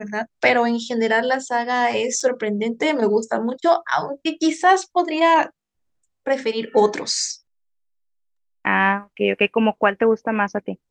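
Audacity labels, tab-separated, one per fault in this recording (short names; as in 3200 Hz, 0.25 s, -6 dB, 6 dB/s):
2.200000	2.200000	gap 4.9 ms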